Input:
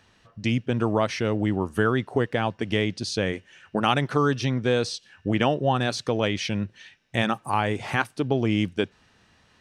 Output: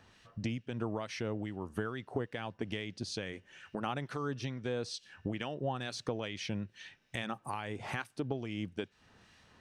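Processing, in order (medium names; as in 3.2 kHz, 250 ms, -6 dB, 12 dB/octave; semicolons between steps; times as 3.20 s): compression 3:1, threshold -35 dBFS, peak gain reduction 14 dB; harmonic tremolo 2.3 Hz, depth 50%, crossover 1.5 kHz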